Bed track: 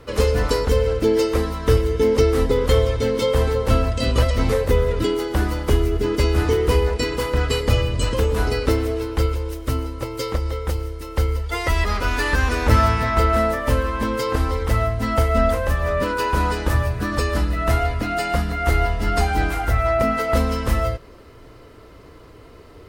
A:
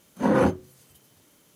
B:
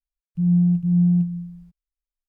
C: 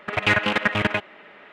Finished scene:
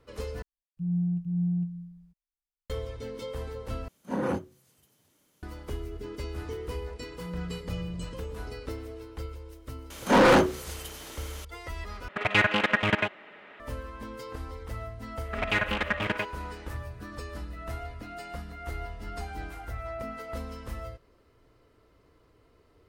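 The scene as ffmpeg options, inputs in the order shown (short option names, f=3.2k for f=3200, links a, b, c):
-filter_complex "[2:a]asplit=2[a][b];[1:a]asplit=2[c][d];[3:a]asplit=2[e][f];[0:a]volume=-18dB[g];[b]highpass=f=240:w=0.5412,highpass=f=240:w=1.3066[h];[d]asplit=2[i][j];[j]highpass=f=720:p=1,volume=31dB,asoftclip=type=tanh:threshold=-6.5dB[k];[i][k]amix=inputs=2:normalize=0,lowpass=f=4.4k:p=1,volume=-6dB[l];[g]asplit=4[m][n][o][p];[m]atrim=end=0.424[q];[a]atrim=end=2.28,asetpts=PTS-STARTPTS,volume=-10.5dB[r];[n]atrim=start=2.696:end=3.884[s];[c]atrim=end=1.55,asetpts=PTS-STARTPTS,volume=-9dB[t];[o]atrim=start=5.426:end=12.084[u];[e]atrim=end=1.52,asetpts=PTS-STARTPTS,volume=-3dB[v];[p]atrim=start=13.596[w];[h]atrim=end=2.28,asetpts=PTS-STARTPTS,volume=-9.5dB,afade=t=in:d=0.004:c=hsin,afade=t=out:st=2.276:d=0.004:c=hsin,adelay=6810[x];[l]atrim=end=1.55,asetpts=PTS-STARTPTS,volume=-4.5dB,afade=t=in:d=0.004:c=hsin,afade=t=out:st=1.546:d=0.004:c=hsin,adelay=9900[y];[f]atrim=end=1.52,asetpts=PTS-STARTPTS,volume=-7.5dB,afade=t=in:d=0.004:c=hsin,afade=t=out:st=1.516:d=0.004:c=hsin,adelay=15250[z];[q][r]acrossfade=d=0.004:c1=hsin:c2=hsin[aa];[aa][s]acrossfade=d=0.004:c1=hsin:c2=hsin[ab];[ab][t]acrossfade=d=0.004:c1=hsin:c2=hsin[ac];[ac][u]acrossfade=d=0.004:c1=hsin:c2=hsin[ad];[ad][v]acrossfade=d=0.004:c1=hsin:c2=hsin[ae];[ae][w]acrossfade=d=0.004:c1=hsin:c2=hsin[af];[af][x][y][z]amix=inputs=4:normalize=0"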